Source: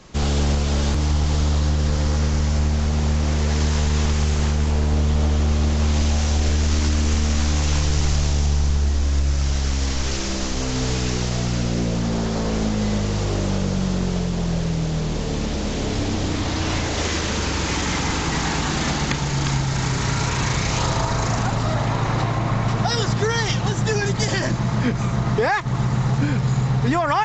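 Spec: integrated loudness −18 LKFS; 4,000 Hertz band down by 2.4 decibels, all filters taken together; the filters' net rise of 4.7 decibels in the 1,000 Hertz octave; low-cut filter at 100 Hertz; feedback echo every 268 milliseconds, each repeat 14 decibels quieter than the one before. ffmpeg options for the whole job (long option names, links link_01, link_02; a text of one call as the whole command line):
ffmpeg -i in.wav -af "highpass=100,equalizer=frequency=1000:width_type=o:gain=6,equalizer=frequency=4000:width_type=o:gain=-3.5,aecho=1:1:268|536:0.2|0.0399,volume=4.5dB" out.wav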